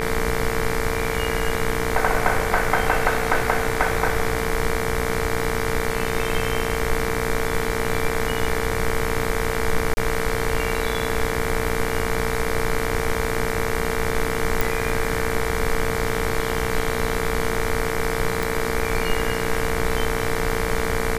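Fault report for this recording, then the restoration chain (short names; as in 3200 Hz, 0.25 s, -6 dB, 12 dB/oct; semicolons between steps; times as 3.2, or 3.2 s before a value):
buzz 60 Hz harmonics 39 -27 dBFS
tone 450 Hz -27 dBFS
9.94–9.97 gap 30 ms
14.61 pop
18.43 pop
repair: de-click; notch 450 Hz, Q 30; de-hum 60 Hz, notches 39; interpolate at 9.94, 30 ms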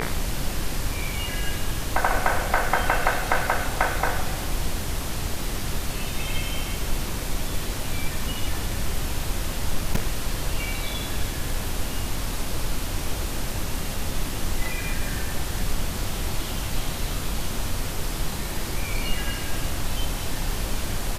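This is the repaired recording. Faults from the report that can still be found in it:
none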